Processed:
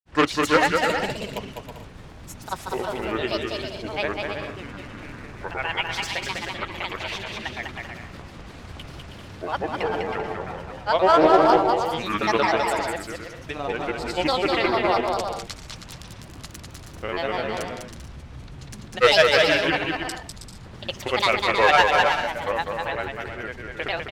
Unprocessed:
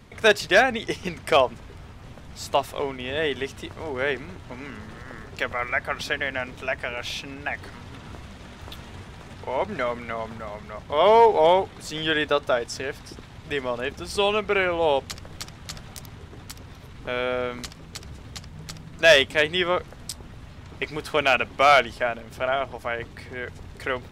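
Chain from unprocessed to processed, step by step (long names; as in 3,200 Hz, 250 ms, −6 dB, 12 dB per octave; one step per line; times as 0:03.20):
granular cloud, grains 20 per second, pitch spread up and down by 7 semitones
bouncing-ball delay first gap 200 ms, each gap 0.6×, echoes 5
highs frequency-modulated by the lows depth 0.14 ms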